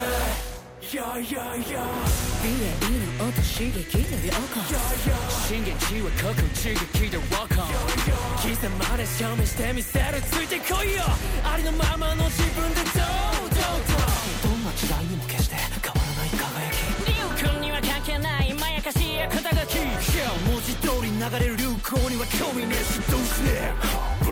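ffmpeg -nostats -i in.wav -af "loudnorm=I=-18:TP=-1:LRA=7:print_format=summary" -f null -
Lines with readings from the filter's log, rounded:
Input Integrated:    -25.3 LUFS
Input True Peak:     -10.8 dBTP
Input LRA:             1.5 LU
Input Threshold:     -35.3 LUFS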